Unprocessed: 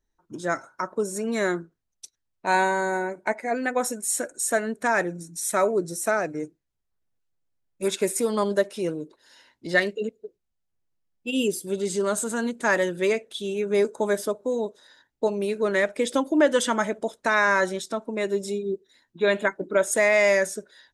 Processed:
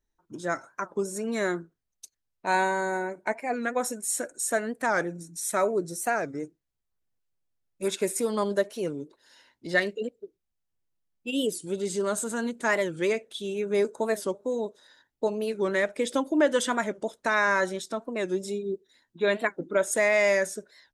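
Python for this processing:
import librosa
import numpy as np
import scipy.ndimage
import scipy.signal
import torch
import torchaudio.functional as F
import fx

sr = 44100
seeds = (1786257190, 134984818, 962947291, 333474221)

y = fx.record_warp(x, sr, rpm=45.0, depth_cents=160.0)
y = F.gain(torch.from_numpy(y), -3.0).numpy()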